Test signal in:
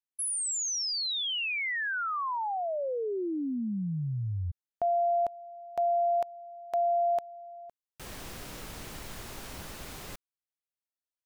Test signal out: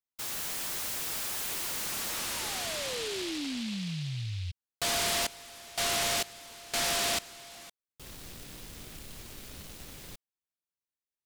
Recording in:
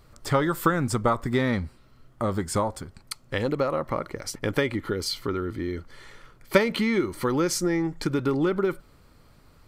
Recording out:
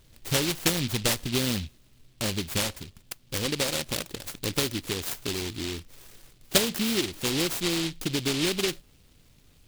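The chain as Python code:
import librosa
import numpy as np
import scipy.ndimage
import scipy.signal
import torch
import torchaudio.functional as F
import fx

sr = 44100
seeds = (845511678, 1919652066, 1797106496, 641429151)

y = fx.noise_mod_delay(x, sr, seeds[0], noise_hz=3300.0, depth_ms=0.32)
y = F.gain(torch.from_numpy(y), -3.0).numpy()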